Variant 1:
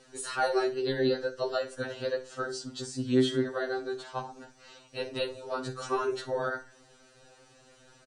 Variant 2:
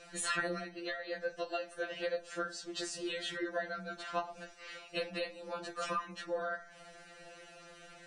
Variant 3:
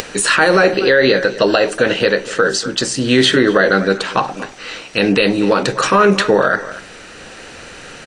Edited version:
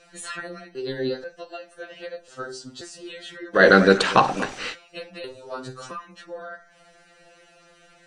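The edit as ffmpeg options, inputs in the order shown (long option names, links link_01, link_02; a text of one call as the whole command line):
ffmpeg -i take0.wav -i take1.wav -i take2.wav -filter_complex "[0:a]asplit=3[link_01][link_02][link_03];[1:a]asplit=5[link_04][link_05][link_06][link_07][link_08];[link_04]atrim=end=0.752[link_09];[link_01]atrim=start=0.748:end=1.242[link_10];[link_05]atrim=start=1.238:end=2.282[link_11];[link_02]atrim=start=2.278:end=2.812[link_12];[link_06]atrim=start=2.808:end=3.63[link_13];[2:a]atrim=start=3.53:end=4.76[link_14];[link_07]atrim=start=4.66:end=5.242[link_15];[link_03]atrim=start=5.238:end=5.912[link_16];[link_08]atrim=start=5.908[link_17];[link_09][link_10]acrossfade=duration=0.004:curve1=hsin:curve2=hsin[link_18];[link_18][link_11]acrossfade=duration=0.004:curve1=hsin:curve2=hsin[link_19];[link_19][link_12]acrossfade=duration=0.004:curve1=hsin:curve2=hsin[link_20];[link_20][link_13]acrossfade=duration=0.004:curve1=hsin:curve2=hsin[link_21];[link_21][link_14]acrossfade=duration=0.1:curve1=tri:curve2=tri[link_22];[link_22][link_15]acrossfade=duration=0.1:curve1=tri:curve2=tri[link_23];[link_23][link_16]acrossfade=duration=0.004:curve1=hsin:curve2=hsin[link_24];[link_24][link_17]acrossfade=duration=0.004:curve1=hsin:curve2=hsin" out.wav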